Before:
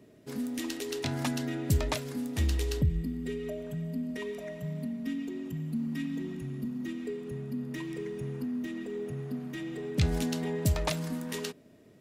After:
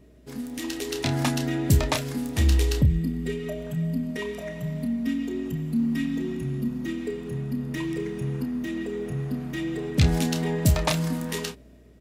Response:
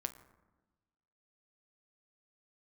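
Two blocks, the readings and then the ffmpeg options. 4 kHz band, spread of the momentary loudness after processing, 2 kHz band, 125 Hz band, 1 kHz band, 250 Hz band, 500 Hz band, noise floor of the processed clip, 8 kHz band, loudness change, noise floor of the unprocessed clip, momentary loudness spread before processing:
+7.0 dB, 10 LU, +7.0 dB, +7.5 dB, +7.0 dB, +6.5 dB, +5.0 dB, −51 dBFS, +6.5 dB, +6.5 dB, −57 dBFS, 8 LU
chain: -filter_complex "[0:a]aeval=exprs='val(0)+0.00178*(sin(2*PI*60*n/s)+sin(2*PI*2*60*n/s)/2+sin(2*PI*3*60*n/s)/3+sin(2*PI*4*60*n/s)/4+sin(2*PI*5*60*n/s)/5)':channel_layout=same,dynaudnorm=framelen=160:gausssize=9:maxgain=6.5dB,asplit=2[link_01][link_02];[link_02]adelay=30,volume=-8.5dB[link_03];[link_01][link_03]amix=inputs=2:normalize=0"

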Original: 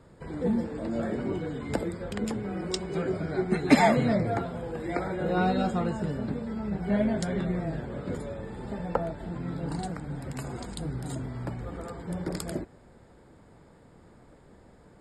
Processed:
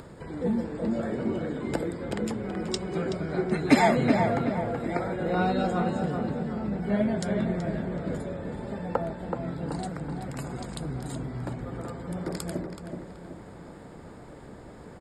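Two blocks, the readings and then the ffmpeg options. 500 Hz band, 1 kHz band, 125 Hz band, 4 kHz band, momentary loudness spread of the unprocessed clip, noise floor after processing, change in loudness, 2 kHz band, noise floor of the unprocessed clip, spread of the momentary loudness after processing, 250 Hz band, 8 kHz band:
+1.0 dB, +1.5 dB, +0.5 dB, +0.5 dB, 11 LU, −46 dBFS, +1.0 dB, +1.0 dB, −55 dBFS, 19 LU, +1.0 dB, 0.0 dB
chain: -filter_complex "[0:a]acompressor=mode=upward:threshold=-36dB:ratio=2.5,lowshelf=frequency=63:gain=-5.5,asplit=2[link_01][link_02];[link_02]adelay=377,lowpass=frequency=2400:poles=1,volume=-5dB,asplit=2[link_03][link_04];[link_04]adelay=377,lowpass=frequency=2400:poles=1,volume=0.45,asplit=2[link_05][link_06];[link_06]adelay=377,lowpass=frequency=2400:poles=1,volume=0.45,asplit=2[link_07][link_08];[link_08]adelay=377,lowpass=frequency=2400:poles=1,volume=0.45,asplit=2[link_09][link_10];[link_10]adelay=377,lowpass=frequency=2400:poles=1,volume=0.45,asplit=2[link_11][link_12];[link_12]adelay=377,lowpass=frequency=2400:poles=1,volume=0.45[link_13];[link_01][link_03][link_05][link_07][link_09][link_11][link_13]amix=inputs=7:normalize=0"

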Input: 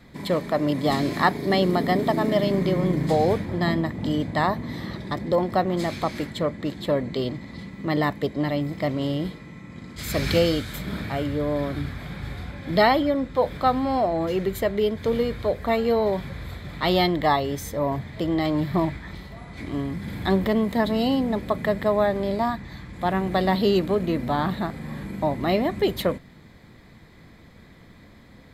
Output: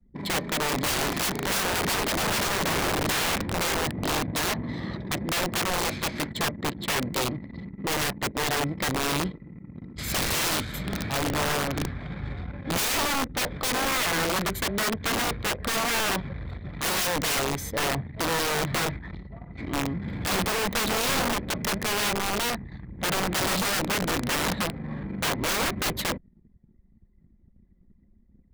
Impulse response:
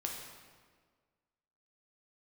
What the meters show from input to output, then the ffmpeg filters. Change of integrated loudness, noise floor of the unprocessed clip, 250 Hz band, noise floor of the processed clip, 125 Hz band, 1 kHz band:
−2.5 dB, −49 dBFS, −7.0 dB, −58 dBFS, −4.5 dB, −3.0 dB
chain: -af "anlmdn=1,aeval=exprs='(mod(11.2*val(0)+1,2)-1)/11.2':channel_layout=same"

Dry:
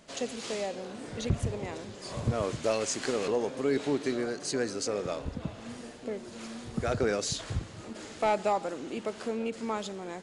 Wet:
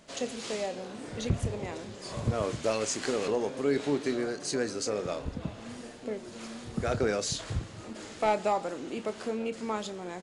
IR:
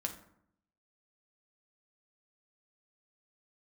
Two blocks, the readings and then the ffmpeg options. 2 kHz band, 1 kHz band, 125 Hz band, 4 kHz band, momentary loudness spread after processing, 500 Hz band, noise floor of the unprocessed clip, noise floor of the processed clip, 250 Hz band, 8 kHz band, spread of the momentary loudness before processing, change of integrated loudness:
0.0 dB, 0.0 dB, 0.0 dB, 0.0 dB, 11 LU, 0.0 dB, −46 dBFS, −46 dBFS, 0.0 dB, 0.0 dB, 11 LU, 0.0 dB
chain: -filter_complex "[0:a]asplit=2[link_01][link_02];[link_02]adelay=28,volume=-13dB[link_03];[link_01][link_03]amix=inputs=2:normalize=0"

